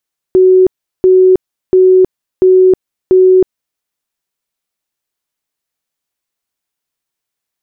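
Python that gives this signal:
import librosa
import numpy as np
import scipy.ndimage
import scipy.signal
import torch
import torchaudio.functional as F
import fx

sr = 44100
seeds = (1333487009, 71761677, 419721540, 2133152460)

y = fx.tone_burst(sr, hz=372.0, cycles=118, every_s=0.69, bursts=5, level_db=-3.0)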